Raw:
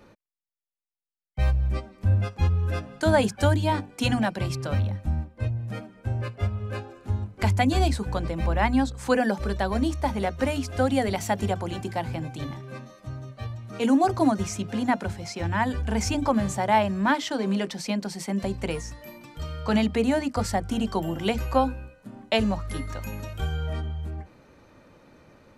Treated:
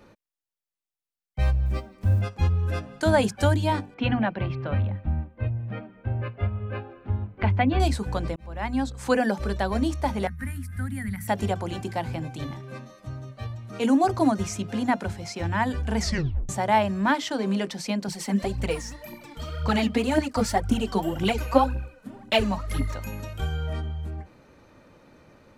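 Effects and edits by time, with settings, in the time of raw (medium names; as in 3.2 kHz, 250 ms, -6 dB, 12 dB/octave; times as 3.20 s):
1.66–2.22 s: block-companded coder 7-bit
3.94–7.80 s: low-pass 3 kHz 24 dB/octave
8.36–9.01 s: fade in
10.27–11.28 s: FFT filter 210 Hz 0 dB, 420 Hz -29 dB, 630 Hz -29 dB, 1.9 kHz 0 dB, 2.8 kHz -19 dB, 6.7 kHz -17 dB, 10 kHz +2 dB
15.99 s: tape stop 0.50 s
18.08–22.95 s: phaser 1.9 Hz, delay 4.8 ms, feedback 63%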